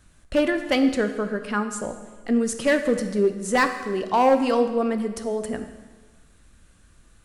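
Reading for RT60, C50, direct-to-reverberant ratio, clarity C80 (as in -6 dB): 1.3 s, 9.5 dB, 7.5 dB, 11.0 dB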